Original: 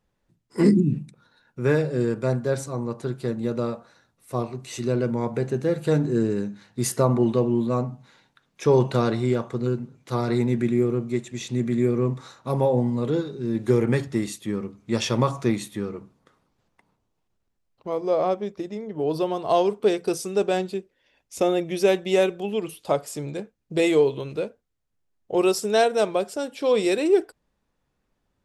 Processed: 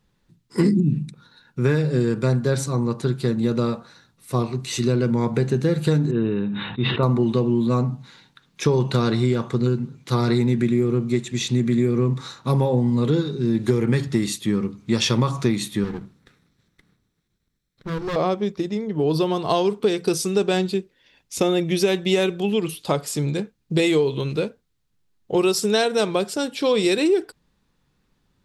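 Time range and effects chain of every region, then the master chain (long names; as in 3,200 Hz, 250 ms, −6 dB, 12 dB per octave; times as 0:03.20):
0:06.11–0:07.03: Chebyshev low-pass with heavy ripple 3,800 Hz, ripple 6 dB + level that may fall only so fast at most 31 dB per second
0:15.84–0:18.16: lower of the sound and its delayed copy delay 0.53 ms + tube saturation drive 28 dB, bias 0.35
whole clip: graphic EQ with 15 bands 160 Hz +5 dB, 630 Hz −7 dB, 4,000 Hz +5 dB; downward compressor, threshold −22 dBFS; level +6.5 dB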